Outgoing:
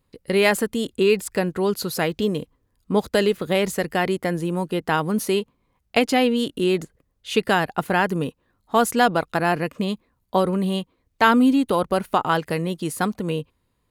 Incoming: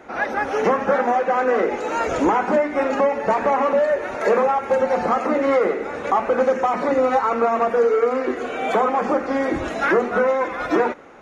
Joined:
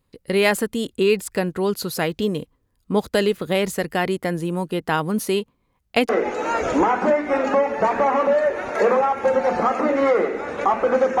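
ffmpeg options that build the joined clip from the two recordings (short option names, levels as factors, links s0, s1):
-filter_complex "[0:a]apad=whole_dur=11.2,atrim=end=11.2,atrim=end=6.092[s0];[1:a]atrim=start=1.548:end=6.66[s1];[s0][s1]acrossfade=d=0.004:c1=hsin:c2=hsin"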